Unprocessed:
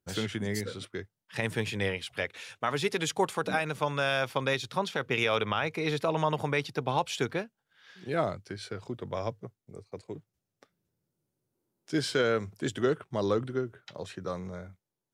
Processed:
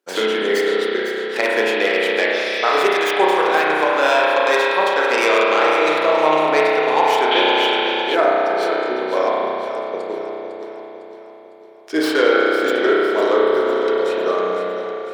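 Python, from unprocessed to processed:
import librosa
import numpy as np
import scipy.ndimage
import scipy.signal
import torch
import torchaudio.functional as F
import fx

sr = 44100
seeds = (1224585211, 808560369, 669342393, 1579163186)

p1 = fx.tracing_dist(x, sr, depth_ms=0.12)
p2 = scipy.signal.sosfilt(scipy.signal.butter(4, 340.0, 'highpass', fs=sr, output='sos'), p1)
p3 = fx.high_shelf(p2, sr, hz=6300.0, db=-9.0)
p4 = p3 + fx.echo_feedback(p3, sr, ms=504, feedback_pct=51, wet_db=-10.0, dry=0)
p5 = fx.rev_spring(p4, sr, rt60_s=2.9, pass_ms=(32,), chirp_ms=25, drr_db=-5.0)
p6 = fx.rider(p5, sr, range_db=4, speed_s=0.5)
p7 = p5 + (p6 * librosa.db_to_amplitude(3.0))
p8 = fx.spec_repair(p7, sr, seeds[0], start_s=2.36, length_s=0.42, low_hz=1700.0, high_hz=6200.0, source='after')
p9 = fx.peak_eq(p8, sr, hz=3200.0, db=14.5, octaves=0.64, at=(7.31, 8.15))
y = p9 * librosa.db_to_amplitude(2.0)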